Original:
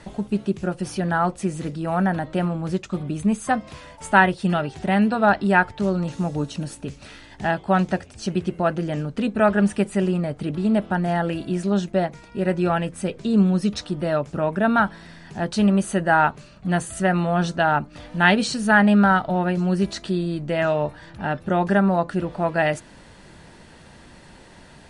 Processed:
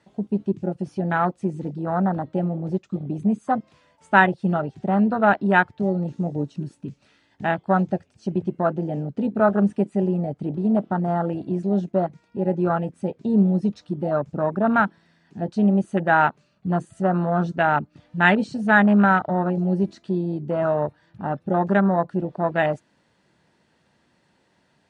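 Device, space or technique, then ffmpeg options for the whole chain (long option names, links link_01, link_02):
over-cleaned archive recording: -af "highpass=110,lowpass=7800,afwtdn=0.0631"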